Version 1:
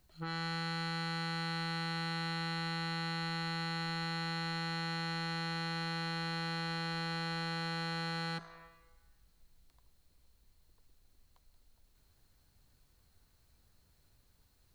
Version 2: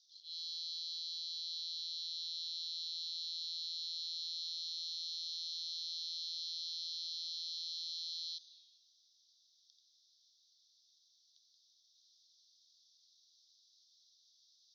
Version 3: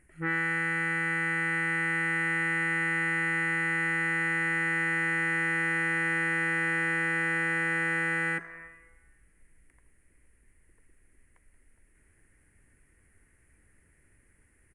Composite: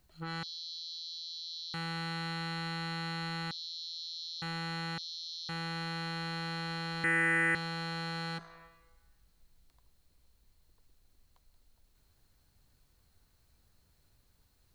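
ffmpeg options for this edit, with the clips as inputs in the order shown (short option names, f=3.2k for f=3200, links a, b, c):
-filter_complex "[1:a]asplit=3[a][b][c];[0:a]asplit=5[d][e][f][g][h];[d]atrim=end=0.432[i];[a]atrim=start=0.428:end=1.742[j];[e]atrim=start=1.738:end=3.512[k];[b]atrim=start=3.508:end=4.422[l];[f]atrim=start=4.418:end=4.982[m];[c]atrim=start=4.978:end=5.492[n];[g]atrim=start=5.488:end=7.042[o];[2:a]atrim=start=7.038:end=7.552[p];[h]atrim=start=7.548[q];[i][j]acrossfade=d=0.004:c1=hsin:c2=hsin[r];[r][k]acrossfade=d=0.004:c1=hsin:c2=hsin[s];[s][l]acrossfade=d=0.004:c1=hsin:c2=hsin[t];[t][m]acrossfade=d=0.004:c1=hsin:c2=hsin[u];[u][n]acrossfade=d=0.004:c1=hsin:c2=hsin[v];[v][o]acrossfade=d=0.004:c1=hsin:c2=hsin[w];[w][p]acrossfade=d=0.004:c1=hsin:c2=hsin[x];[x][q]acrossfade=d=0.004:c1=hsin:c2=hsin"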